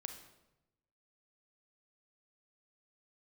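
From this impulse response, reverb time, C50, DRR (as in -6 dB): 0.95 s, 7.5 dB, 5.5 dB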